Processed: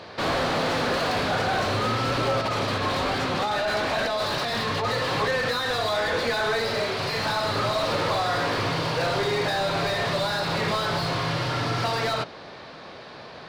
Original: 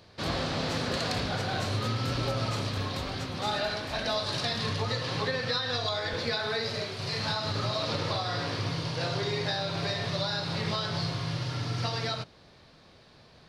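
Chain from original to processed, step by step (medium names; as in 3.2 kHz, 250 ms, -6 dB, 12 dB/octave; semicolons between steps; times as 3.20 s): 2.41–4.85 s: compressor with a negative ratio -32 dBFS, ratio -0.5; overdrive pedal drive 25 dB, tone 1.3 kHz, clips at -17 dBFS; trim +2.5 dB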